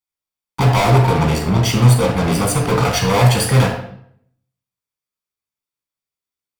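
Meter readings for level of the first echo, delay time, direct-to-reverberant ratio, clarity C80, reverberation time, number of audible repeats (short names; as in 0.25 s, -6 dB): none, none, 1.0 dB, 8.5 dB, 0.65 s, none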